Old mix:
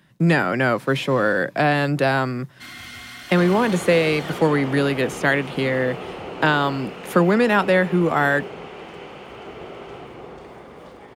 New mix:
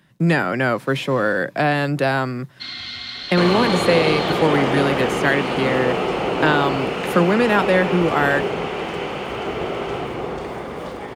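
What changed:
first sound: add resonant low-pass 4.1 kHz, resonance Q 6.5; second sound +11.5 dB

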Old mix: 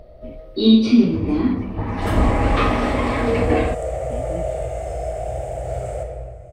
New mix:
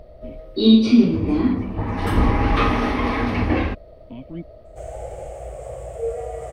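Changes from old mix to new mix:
second sound: entry +2.75 s; reverb: off

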